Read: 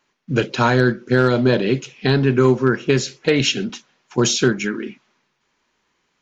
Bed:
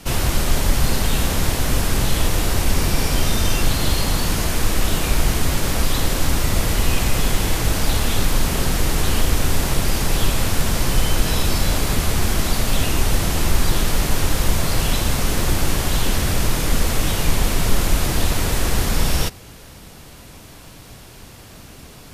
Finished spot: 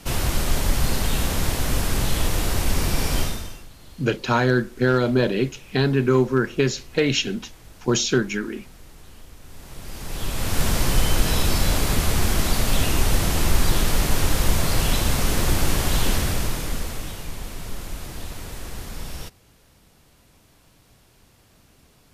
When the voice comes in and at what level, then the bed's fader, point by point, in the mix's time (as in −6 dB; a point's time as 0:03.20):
3.70 s, −3.5 dB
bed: 0:03.21 −3.5 dB
0:03.68 −27 dB
0:09.40 −27 dB
0:10.63 −1.5 dB
0:16.11 −1.5 dB
0:17.28 −15 dB